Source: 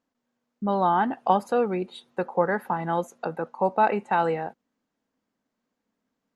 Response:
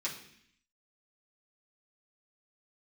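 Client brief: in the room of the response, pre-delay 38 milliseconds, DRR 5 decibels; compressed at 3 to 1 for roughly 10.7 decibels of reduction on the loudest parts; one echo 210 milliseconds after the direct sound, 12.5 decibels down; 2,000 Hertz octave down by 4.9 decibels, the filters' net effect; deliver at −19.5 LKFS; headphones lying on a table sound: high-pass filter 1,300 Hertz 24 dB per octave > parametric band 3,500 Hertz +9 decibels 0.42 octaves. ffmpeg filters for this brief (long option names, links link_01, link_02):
-filter_complex "[0:a]equalizer=frequency=2000:width_type=o:gain=-6.5,acompressor=threshold=-31dB:ratio=3,aecho=1:1:210:0.237,asplit=2[link_01][link_02];[1:a]atrim=start_sample=2205,adelay=38[link_03];[link_02][link_03]afir=irnorm=-1:irlink=0,volume=-8dB[link_04];[link_01][link_04]amix=inputs=2:normalize=0,highpass=frequency=1300:width=0.5412,highpass=frequency=1300:width=1.3066,equalizer=frequency=3500:width_type=o:width=0.42:gain=9,volume=25dB"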